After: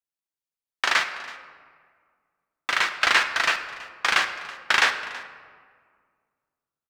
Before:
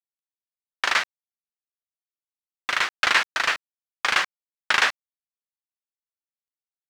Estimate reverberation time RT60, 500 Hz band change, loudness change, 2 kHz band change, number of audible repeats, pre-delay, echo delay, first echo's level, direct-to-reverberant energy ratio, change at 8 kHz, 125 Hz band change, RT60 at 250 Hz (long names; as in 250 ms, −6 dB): 1.8 s, +1.0 dB, 0.0 dB, +1.0 dB, 1, 3 ms, 327 ms, −19.5 dB, 7.0 dB, +0.5 dB, can't be measured, 2.2 s